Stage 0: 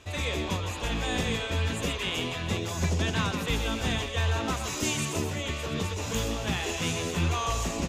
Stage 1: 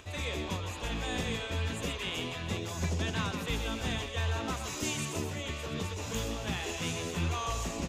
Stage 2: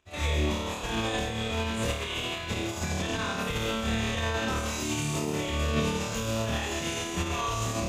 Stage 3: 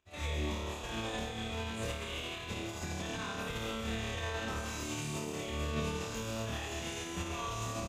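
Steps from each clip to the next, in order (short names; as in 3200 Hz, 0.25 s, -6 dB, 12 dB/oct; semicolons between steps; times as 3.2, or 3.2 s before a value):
upward compressor, threshold -43 dBFS; gain -5 dB
flutter echo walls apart 4.6 m, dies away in 1 s; limiter -24 dBFS, peak gain reduction 9.5 dB; upward expander 2.5:1, over -49 dBFS; gain +7 dB
echo 0.244 s -8.5 dB; gain -8.5 dB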